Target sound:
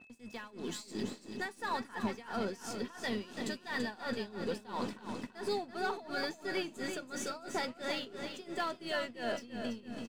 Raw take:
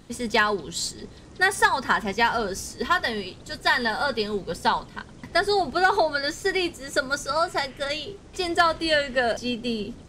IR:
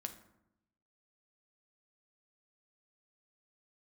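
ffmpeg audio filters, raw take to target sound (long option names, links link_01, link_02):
-filter_complex "[0:a]highpass=42,lowshelf=frequency=150:width_type=q:width=3:gain=-14,areverse,acompressor=threshold=-33dB:ratio=10,areverse,alimiter=level_in=10dB:limit=-24dB:level=0:latency=1:release=60,volume=-10dB,dynaudnorm=framelen=120:gausssize=11:maxgain=8dB,aeval=exprs='0.0531*(cos(1*acos(clip(val(0)/0.0531,-1,1)))-cos(1*PI/2))+0.00168*(cos(8*acos(clip(val(0)/0.0531,-1,1)))-cos(8*PI/2))':channel_layout=same,asplit=2[link_01][link_02];[link_02]asetrate=22050,aresample=44100,atempo=2,volume=-17dB[link_03];[link_01][link_03]amix=inputs=2:normalize=0,aeval=exprs='sgn(val(0))*max(abs(val(0))-0.00188,0)':channel_layout=same,aeval=exprs='val(0)+0.00178*sin(2*PI*2600*n/s)':channel_layout=same,tremolo=f=2.9:d=0.9,aecho=1:1:334|668|1002|1336|1670:0.422|0.177|0.0744|0.0312|0.0131,adynamicequalizer=threshold=0.00158:dfrequency=5700:dqfactor=0.7:tfrequency=5700:tqfactor=0.7:attack=5:release=100:ratio=0.375:range=2:mode=cutabove:tftype=highshelf"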